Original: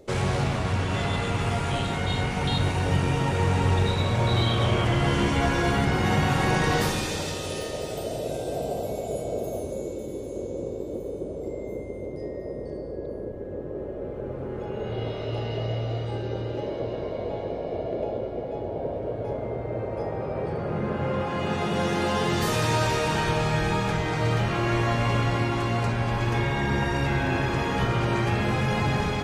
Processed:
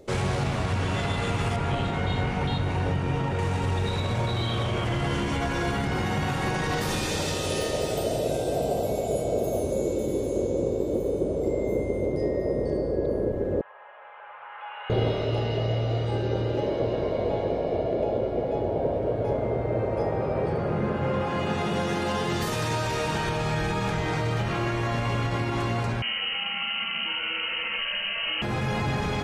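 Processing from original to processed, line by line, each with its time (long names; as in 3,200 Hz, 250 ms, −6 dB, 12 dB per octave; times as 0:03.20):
0:01.56–0:03.39: low-pass filter 2,400 Hz 6 dB per octave
0:13.61–0:14.90: elliptic band-pass filter 890–3,000 Hz, stop band 50 dB
0:26.02–0:28.42: voice inversion scrambler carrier 3,000 Hz
whole clip: brickwall limiter −18 dBFS; speech leveller; level +1 dB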